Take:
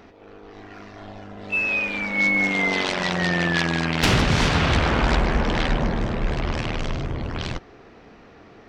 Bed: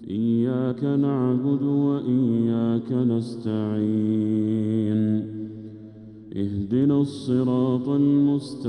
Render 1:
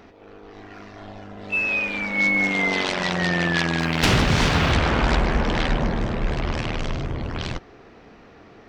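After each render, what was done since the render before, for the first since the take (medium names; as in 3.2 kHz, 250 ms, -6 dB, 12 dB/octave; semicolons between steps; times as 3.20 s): 3.79–4.72 s: companding laws mixed up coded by mu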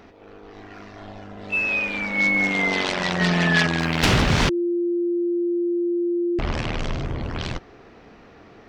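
3.20–3.67 s: comb 4.7 ms, depth 92%; 4.49–6.39 s: bleep 347 Hz -19.5 dBFS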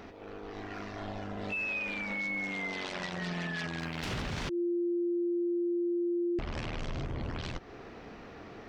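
compression 2.5:1, threshold -33 dBFS, peak gain reduction 12.5 dB; peak limiter -27.5 dBFS, peak gain reduction 9.5 dB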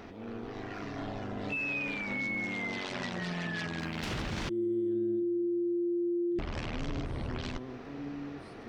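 add bed -22 dB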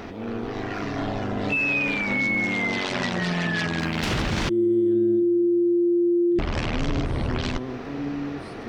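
trim +10.5 dB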